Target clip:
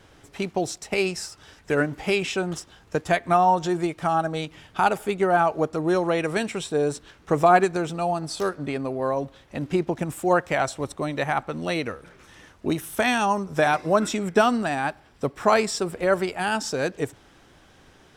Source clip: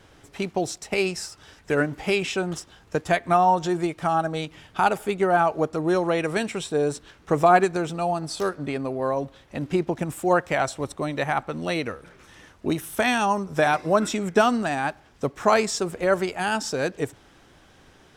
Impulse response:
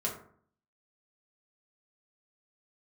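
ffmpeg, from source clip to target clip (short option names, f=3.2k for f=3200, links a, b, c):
-filter_complex "[0:a]asettb=1/sr,asplit=3[a][b][c];[a]atrim=end=14.194[d];[b]atrim=start=14.19:end=16.58,asetpts=PTS-STARTPTS,afade=t=in:d=0.004:c=qsin,afade=t=out:st=2.386:d=0.004:c=qsin,bandreject=f=6.5k:w=8[e];[c]atrim=start=16.576[f];[d][e]acrossfade=d=0.004:c1=hsin:c2=qsin[g];[g][f]acrossfade=d=0.004:c1=qsin:c2=hsin"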